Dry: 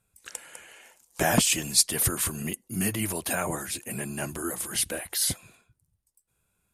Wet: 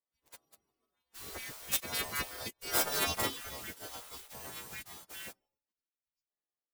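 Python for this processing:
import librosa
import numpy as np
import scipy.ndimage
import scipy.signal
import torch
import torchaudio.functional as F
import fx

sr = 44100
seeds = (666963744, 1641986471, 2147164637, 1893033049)

y = fx.freq_snap(x, sr, grid_st=2)
y = fx.doppler_pass(y, sr, speed_mps=9, closest_m=2.6, pass_at_s=2.92)
y = fx.high_shelf(y, sr, hz=4200.0, db=3.5)
y = fx.leveller(y, sr, passes=1)
y = fx.spec_gate(y, sr, threshold_db=-25, keep='weak')
y = y * librosa.db_to_amplitude(6.5)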